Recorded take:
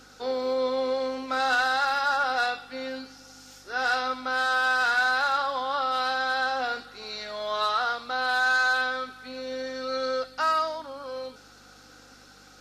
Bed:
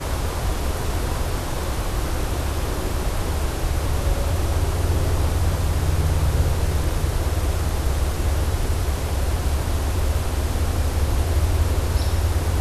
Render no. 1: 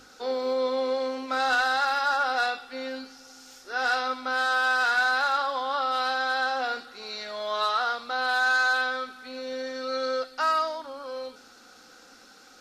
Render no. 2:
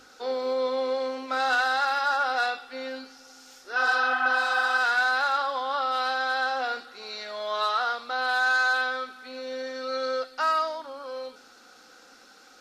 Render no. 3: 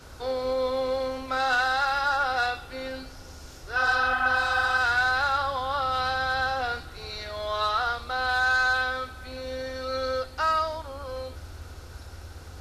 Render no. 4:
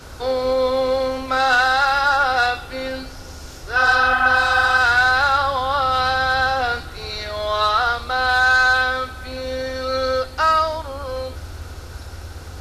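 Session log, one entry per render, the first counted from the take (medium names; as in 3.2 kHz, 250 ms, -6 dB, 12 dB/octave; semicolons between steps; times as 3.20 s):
de-hum 50 Hz, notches 6
3.79–4.75 s: spectral replace 620–3500 Hz after; tone controls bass -6 dB, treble -2 dB
add bed -22 dB
trim +8 dB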